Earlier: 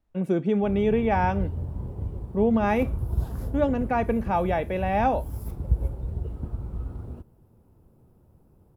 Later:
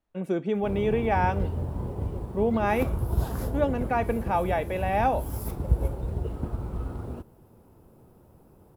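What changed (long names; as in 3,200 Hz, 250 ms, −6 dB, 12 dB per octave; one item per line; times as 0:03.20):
background +9.0 dB
master: add low-shelf EQ 220 Hz −10 dB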